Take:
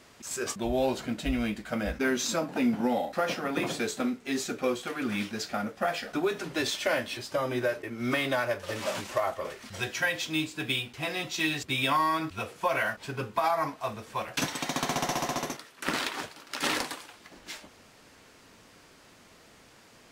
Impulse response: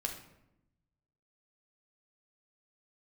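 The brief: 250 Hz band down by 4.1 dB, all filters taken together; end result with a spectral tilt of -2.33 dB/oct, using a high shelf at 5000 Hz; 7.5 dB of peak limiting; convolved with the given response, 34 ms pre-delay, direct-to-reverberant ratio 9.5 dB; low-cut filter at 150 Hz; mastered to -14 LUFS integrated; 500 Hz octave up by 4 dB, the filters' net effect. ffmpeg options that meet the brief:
-filter_complex "[0:a]highpass=150,equalizer=f=250:t=o:g=-6.5,equalizer=f=500:t=o:g=6.5,highshelf=f=5k:g=4,alimiter=limit=-19dB:level=0:latency=1,asplit=2[a][b];[1:a]atrim=start_sample=2205,adelay=34[c];[b][c]afir=irnorm=-1:irlink=0,volume=-11dB[d];[a][d]amix=inputs=2:normalize=0,volume=16dB"

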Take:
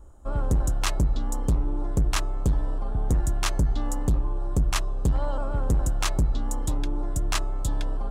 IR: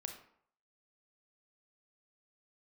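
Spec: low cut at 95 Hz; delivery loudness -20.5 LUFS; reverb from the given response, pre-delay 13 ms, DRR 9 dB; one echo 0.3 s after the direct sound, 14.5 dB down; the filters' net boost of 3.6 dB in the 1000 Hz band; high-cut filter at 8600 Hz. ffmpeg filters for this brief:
-filter_complex "[0:a]highpass=95,lowpass=8.6k,equalizer=f=1k:t=o:g=4.5,aecho=1:1:300:0.188,asplit=2[a][b];[1:a]atrim=start_sample=2205,adelay=13[c];[b][c]afir=irnorm=-1:irlink=0,volume=-6.5dB[d];[a][d]amix=inputs=2:normalize=0,volume=10.5dB"

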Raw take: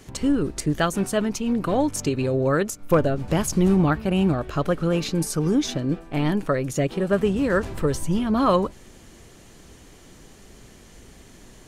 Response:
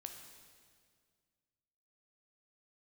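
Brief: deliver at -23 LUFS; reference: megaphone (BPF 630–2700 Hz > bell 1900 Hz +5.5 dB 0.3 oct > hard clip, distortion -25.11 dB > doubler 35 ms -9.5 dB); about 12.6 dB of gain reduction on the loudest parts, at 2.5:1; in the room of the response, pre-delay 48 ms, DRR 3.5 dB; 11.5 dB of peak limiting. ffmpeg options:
-filter_complex "[0:a]acompressor=threshold=-34dB:ratio=2.5,alimiter=level_in=6dB:limit=-24dB:level=0:latency=1,volume=-6dB,asplit=2[a][b];[1:a]atrim=start_sample=2205,adelay=48[c];[b][c]afir=irnorm=-1:irlink=0,volume=1dB[d];[a][d]amix=inputs=2:normalize=0,highpass=630,lowpass=2.7k,equalizer=f=1.9k:t=o:w=0.3:g=5.5,asoftclip=type=hard:threshold=-33.5dB,asplit=2[e][f];[f]adelay=35,volume=-9.5dB[g];[e][g]amix=inputs=2:normalize=0,volume=23dB"

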